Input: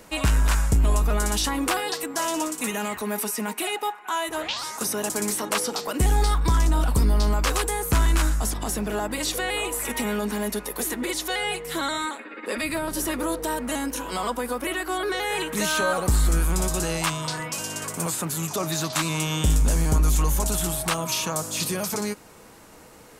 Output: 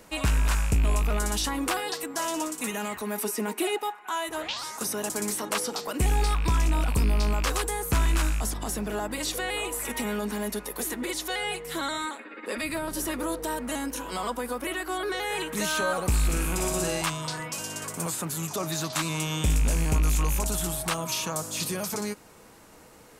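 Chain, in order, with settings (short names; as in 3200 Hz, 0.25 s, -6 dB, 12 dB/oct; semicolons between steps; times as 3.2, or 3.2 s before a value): rattling part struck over -20 dBFS, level -22 dBFS; 3.24–3.78 bell 360 Hz +9 dB 0.86 oct; 16.25–17.02 flutter echo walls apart 7.9 m, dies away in 0.57 s; gain -3.5 dB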